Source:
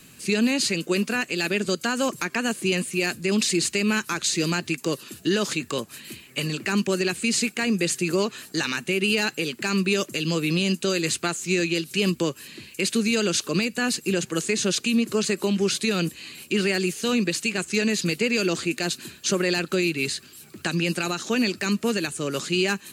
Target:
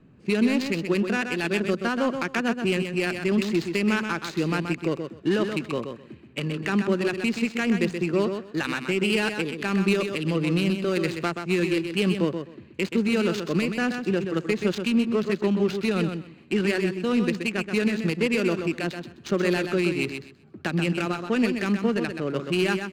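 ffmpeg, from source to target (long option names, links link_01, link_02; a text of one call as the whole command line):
ffmpeg -i in.wav -af "adynamicsmooth=sensitivity=1.5:basefreq=850,aecho=1:1:128|256|384:0.447|0.0804|0.0145" out.wav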